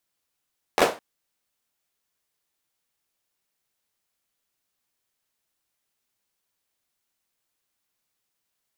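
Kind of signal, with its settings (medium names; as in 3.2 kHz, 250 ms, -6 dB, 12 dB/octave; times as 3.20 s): hand clap length 0.21 s, apart 12 ms, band 580 Hz, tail 0.29 s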